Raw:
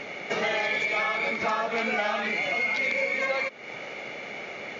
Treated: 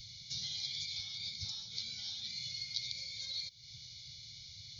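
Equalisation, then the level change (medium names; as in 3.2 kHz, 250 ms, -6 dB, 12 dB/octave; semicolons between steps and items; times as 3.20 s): elliptic band-stop 110–4200 Hz, stop band 40 dB; static phaser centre 1.8 kHz, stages 8; +7.0 dB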